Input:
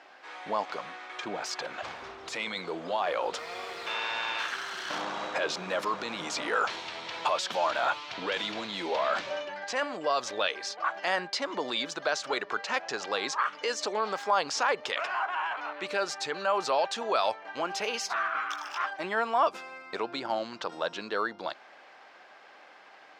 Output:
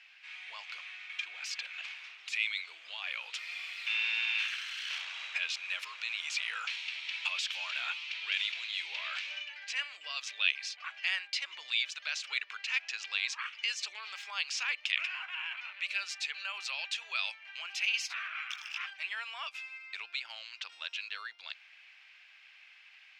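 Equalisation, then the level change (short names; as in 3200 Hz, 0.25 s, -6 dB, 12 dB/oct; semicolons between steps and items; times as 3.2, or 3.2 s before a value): resonant high-pass 2500 Hz, resonance Q 4; -5.5 dB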